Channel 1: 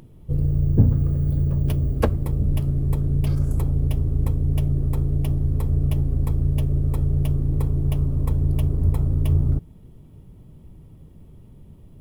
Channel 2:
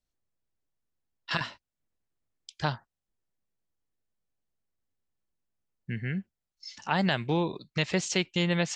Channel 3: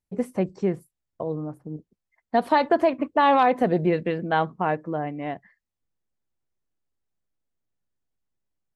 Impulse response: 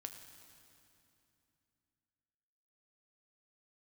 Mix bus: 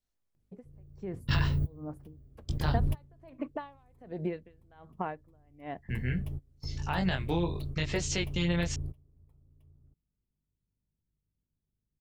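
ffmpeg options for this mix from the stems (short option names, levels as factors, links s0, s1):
-filter_complex "[0:a]aeval=exprs='val(0)+0.00631*(sin(2*PI*50*n/s)+sin(2*PI*2*50*n/s)/2+sin(2*PI*3*50*n/s)/3+sin(2*PI*4*50*n/s)/4+sin(2*PI*5*50*n/s)/5)':c=same,adelay=350,volume=0.447,afade=t=out:st=2.84:d=0.55:silence=0.354813[s0];[1:a]flanger=delay=19:depth=4.7:speed=0.75,volume=1.19,asplit=2[s1][s2];[2:a]acompressor=threshold=0.0631:ratio=10,aeval=exprs='val(0)*pow(10,-36*(0.5-0.5*cos(2*PI*1.3*n/s))/20)':c=same,adelay=400,volume=0.668[s3];[s2]apad=whole_len=545024[s4];[s0][s4]sidechaingate=range=0.0501:threshold=0.00158:ratio=16:detection=peak[s5];[s1][s3]amix=inputs=2:normalize=0,alimiter=limit=0.112:level=0:latency=1:release=100,volume=1[s6];[s5][s6]amix=inputs=2:normalize=0"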